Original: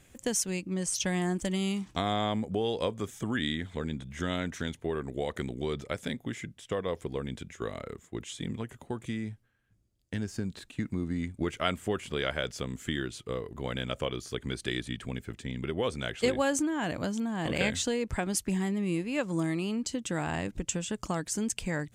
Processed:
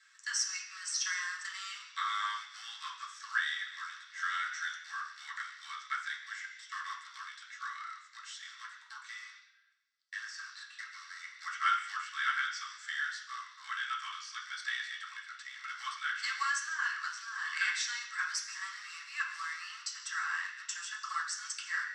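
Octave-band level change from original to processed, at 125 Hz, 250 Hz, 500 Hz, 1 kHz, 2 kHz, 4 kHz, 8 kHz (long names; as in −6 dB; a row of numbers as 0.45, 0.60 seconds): below −40 dB, below −40 dB, below −40 dB, 0.0 dB, +4.0 dB, −2.0 dB, −3.5 dB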